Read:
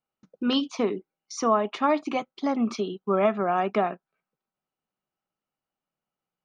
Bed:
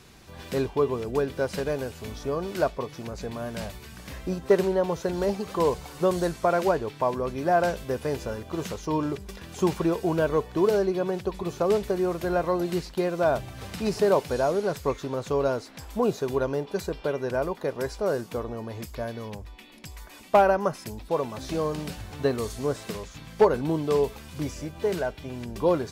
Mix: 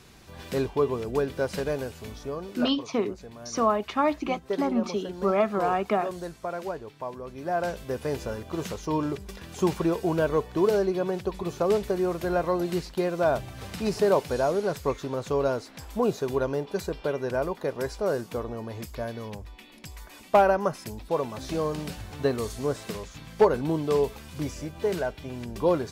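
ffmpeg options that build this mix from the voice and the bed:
ffmpeg -i stem1.wav -i stem2.wav -filter_complex "[0:a]adelay=2150,volume=-1dB[link_01];[1:a]volume=9dB,afade=type=out:start_time=1.74:duration=0.97:silence=0.334965,afade=type=in:start_time=7.26:duration=0.91:silence=0.334965[link_02];[link_01][link_02]amix=inputs=2:normalize=0" out.wav

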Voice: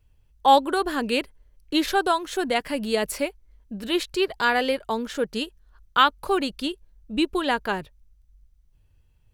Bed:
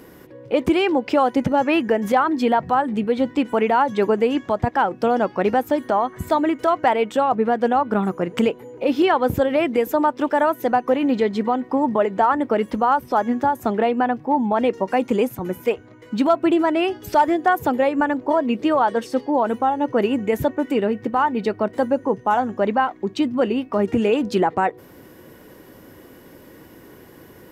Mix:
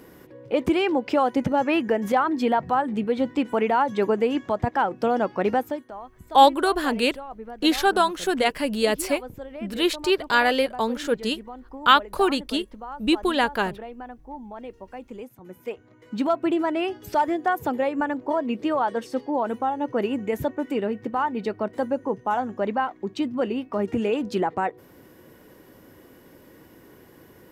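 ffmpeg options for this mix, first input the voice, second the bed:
ffmpeg -i stem1.wav -i stem2.wav -filter_complex "[0:a]adelay=5900,volume=2dB[link_01];[1:a]volume=10dB,afade=type=out:start_time=5.57:duration=0.28:silence=0.16788,afade=type=in:start_time=15.41:duration=0.82:silence=0.211349[link_02];[link_01][link_02]amix=inputs=2:normalize=0" out.wav

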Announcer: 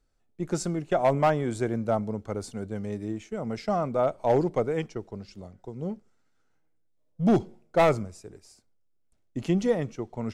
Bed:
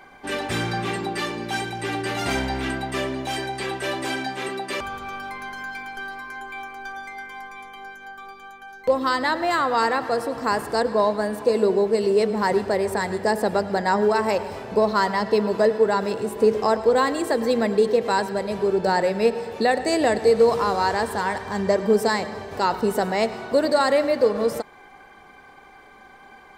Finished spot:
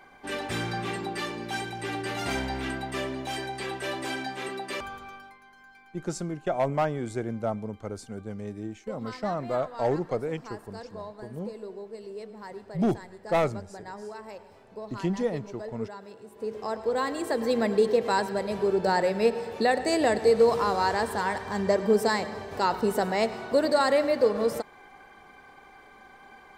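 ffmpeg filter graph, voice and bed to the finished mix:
ffmpeg -i stem1.wav -i stem2.wav -filter_complex "[0:a]adelay=5550,volume=-3.5dB[link_01];[1:a]volume=11.5dB,afade=type=out:start_time=4.77:duration=0.61:silence=0.177828,afade=type=in:start_time=16.3:duration=1.37:silence=0.141254[link_02];[link_01][link_02]amix=inputs=2:normalize=0" out.wav

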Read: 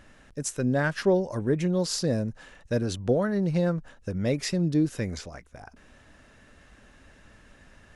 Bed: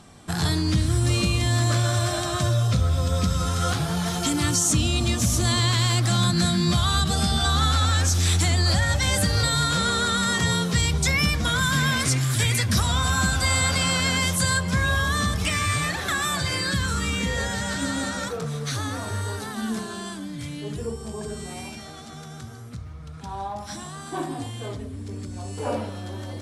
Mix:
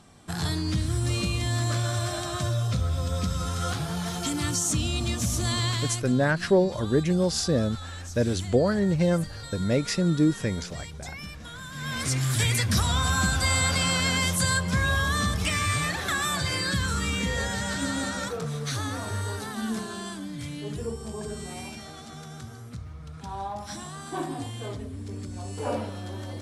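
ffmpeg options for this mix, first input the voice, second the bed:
ffmpeg -i stem1.wav -i stem2.wav -filter_complex "[0:a]adelay=5450,volume=2dB[link_01];[1:a]volume=11dB,afade=type=out:start_time=5.68:duration=0.45:silence=0.223872,afade=type=in:start_time=11.74:duration=0.53:silence=0.158489[link_02];[link_01][link_02]amix=inputs=2:normalize=0" out.wav

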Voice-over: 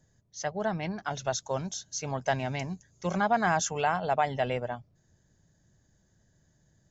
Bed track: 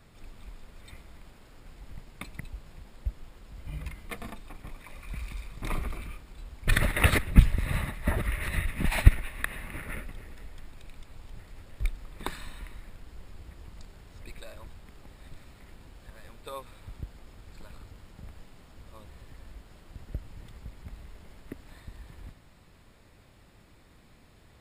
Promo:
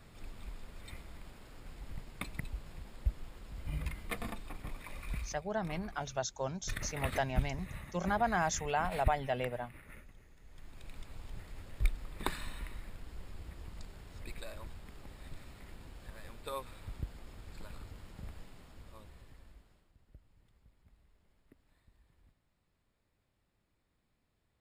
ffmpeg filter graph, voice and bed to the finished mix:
ffmpeg -i stem1.wav -i stem2.wav -filter_complex "[0:a]adelay=4900,volume=-5.5dB[link_01];[1:a]volume=15dB,afade=type=out:start_time=5.13:duration=0.25:silence=0.16788,afade=type=in:start_time=10.42:duration=0.55:silence=0.177828,afade=type=out:start_time=18.29:duration=1.63:silence=0.0891251[link_02];[link_01][link_02]amix=inputs=2:normalize=0" out.wav

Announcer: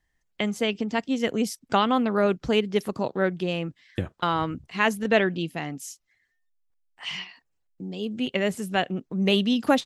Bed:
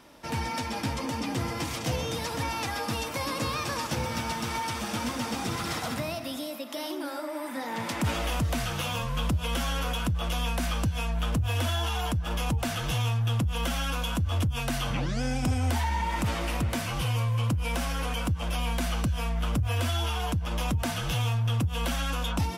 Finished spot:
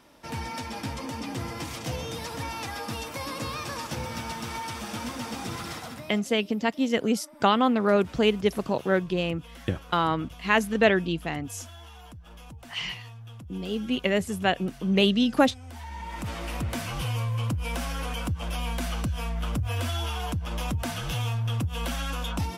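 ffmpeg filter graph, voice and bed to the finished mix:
ffmpeg -i stem1.wav -i stem2.wav -filter_complex "[0:a]adelay=5700,volume=0.5dB[link_01];[1:a]volume=13dB,afade=type=out:start_time=5.56:duration=0.72:silence=0.188365,afade=type=in:start_time=15.67:duration=1.09:silence=0.158489[link_02];[link_01][link_02]amix=inputs=2:normalize=0" out.wav

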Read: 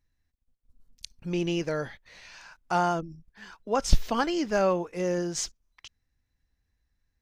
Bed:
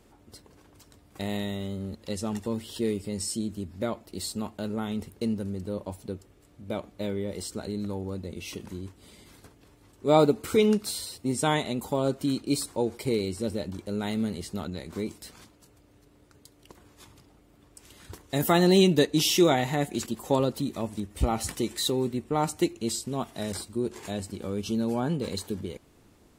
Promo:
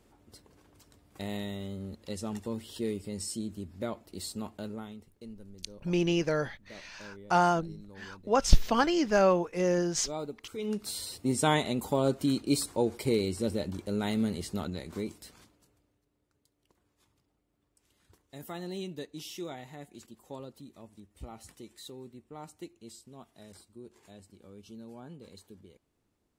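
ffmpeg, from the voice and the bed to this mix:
ffmpeg -i stem1.wav -i stem2.wav -filter_complex "[0:a]adelay=4600,volume=1dB[link_01];[1:a]volume=12dB,afade=type=out:start_time=4.57:duration=0.43:silence=0.237137,afade=type=in:start_time=10.58:duration=0.57:silence=0.141254,afade=type=out:start_time=14.57:duration=1.44:silence=0.11885[link_02];[link_01][link_02]amix=inputs=2:normalize=0" out.wav

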